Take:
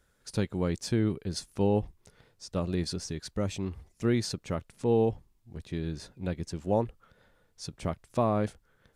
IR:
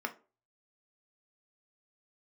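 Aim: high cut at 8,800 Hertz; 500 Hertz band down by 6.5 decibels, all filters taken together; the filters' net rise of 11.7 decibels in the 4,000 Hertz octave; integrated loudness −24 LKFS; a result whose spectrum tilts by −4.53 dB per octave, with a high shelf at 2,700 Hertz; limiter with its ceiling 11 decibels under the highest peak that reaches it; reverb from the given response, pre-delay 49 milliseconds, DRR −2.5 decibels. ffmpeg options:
-filter_complex "[0:a]lowpass=8800,equalizer=frequency=500:width_type=o:gain=-8.5,highshelf=frequency=2700:gain=7.5,equalizer=frequency=4000:width_type=o:gain=8,alimiter=limit=-21.5dB:level=0:latency=1,asplit=2[link_01][link_02];[1:a]atrim=start_sample=2205,adelay=49[link_03];[link_02][link_03]afir=irnorm=-1:irlink=0,volume=-1.5dB[link_04];[link_01][link_04]amix=inputs=2:normalize=0,volume=7.5dB"

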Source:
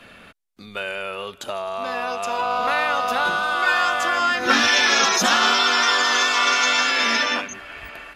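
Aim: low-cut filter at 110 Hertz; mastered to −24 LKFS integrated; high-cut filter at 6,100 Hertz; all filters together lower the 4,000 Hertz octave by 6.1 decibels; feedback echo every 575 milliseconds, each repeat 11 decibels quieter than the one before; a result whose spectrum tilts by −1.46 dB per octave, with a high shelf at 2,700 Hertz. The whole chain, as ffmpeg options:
ffmpeg -i in.wav -af "highpass=110,lowpass=6100,highshelf=frequency=2700:gain=-5,equalizer=frequency=4000:width_type=o:gain=-3,aecho=1:1:575|1150|1725:0.282|0.0789|0.0221,volume=-3dB" out.wav

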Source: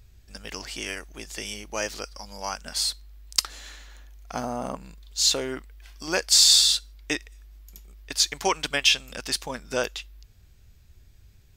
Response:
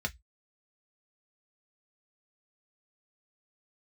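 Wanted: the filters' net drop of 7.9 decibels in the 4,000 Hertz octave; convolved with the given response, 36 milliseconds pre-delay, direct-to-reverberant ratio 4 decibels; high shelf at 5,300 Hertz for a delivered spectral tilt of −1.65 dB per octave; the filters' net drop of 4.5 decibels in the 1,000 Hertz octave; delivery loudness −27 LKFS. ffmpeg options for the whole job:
-filter_complex "[0:a]equalizer=frequency=1000:width_type=o:gain=-5.5,equalizer=frequency=4000:width_type=o:gain=-6,highshelf=frequency=5300:gain=-7.5,asplit=2[link_01][link_02];[1:a]atrim=start_sample=2205,adelay=36[link_03];[link_02][link_03]afir=irnorm=-1:irlink=0,volume=-8.5dB[link_04];[link_01][link_04]amix=inputs=2:normalize=0,volume=2.5dB"

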